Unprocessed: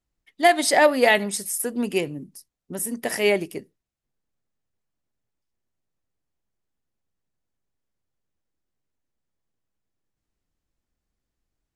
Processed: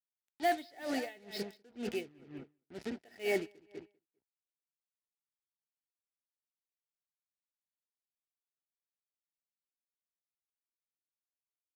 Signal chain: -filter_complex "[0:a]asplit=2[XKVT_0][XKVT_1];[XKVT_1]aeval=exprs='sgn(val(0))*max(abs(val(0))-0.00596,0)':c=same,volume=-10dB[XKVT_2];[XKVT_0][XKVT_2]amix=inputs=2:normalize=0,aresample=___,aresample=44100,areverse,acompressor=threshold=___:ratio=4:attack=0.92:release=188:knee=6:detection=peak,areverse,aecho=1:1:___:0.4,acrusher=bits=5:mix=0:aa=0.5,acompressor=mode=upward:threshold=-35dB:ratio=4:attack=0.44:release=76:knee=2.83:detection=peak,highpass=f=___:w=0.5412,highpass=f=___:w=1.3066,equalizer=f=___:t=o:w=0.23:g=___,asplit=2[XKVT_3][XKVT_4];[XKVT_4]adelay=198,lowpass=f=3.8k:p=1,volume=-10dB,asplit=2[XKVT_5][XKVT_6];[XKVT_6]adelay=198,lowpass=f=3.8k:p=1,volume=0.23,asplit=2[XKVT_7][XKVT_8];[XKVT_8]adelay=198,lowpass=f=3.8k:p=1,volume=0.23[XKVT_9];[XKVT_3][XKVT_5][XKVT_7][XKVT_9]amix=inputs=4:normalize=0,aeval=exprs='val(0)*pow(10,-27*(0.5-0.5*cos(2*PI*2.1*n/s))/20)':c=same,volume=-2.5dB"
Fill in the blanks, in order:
11025, -25dB, 2.7, 45, 45, 1.1k, -14.5